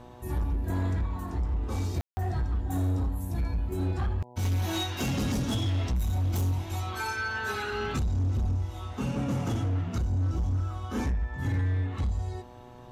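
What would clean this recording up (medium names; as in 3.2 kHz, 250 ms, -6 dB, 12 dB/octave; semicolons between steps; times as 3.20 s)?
clip repair -24 dBFS; de-hum 122.7 Hz, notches 8; room tone fill 2.01–2.17 s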